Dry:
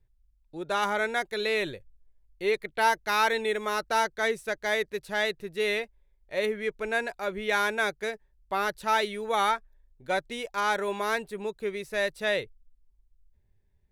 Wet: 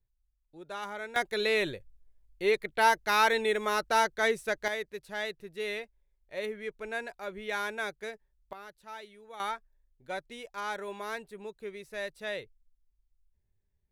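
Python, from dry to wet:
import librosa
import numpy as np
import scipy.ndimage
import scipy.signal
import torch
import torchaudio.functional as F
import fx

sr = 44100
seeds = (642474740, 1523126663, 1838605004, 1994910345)

y = fx.gain(x, sr, db=fx.steps((0.0, -11.5), (1.16, 0.0), (4.68, -7.5), (8.53, -19.5), (9.4, -9.0)))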